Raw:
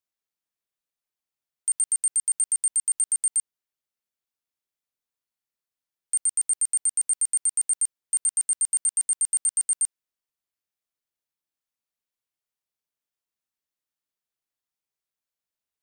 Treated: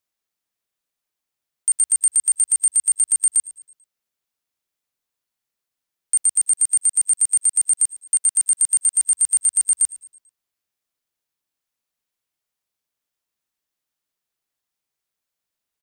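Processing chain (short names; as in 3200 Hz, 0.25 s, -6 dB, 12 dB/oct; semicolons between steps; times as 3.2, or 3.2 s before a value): 6.27–8.88 HPF 290 Hz 6 dB/oct; frequency-shifting echo 0.11 s, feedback 45%, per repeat -84 Hz, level -19 dB; gain +6 dB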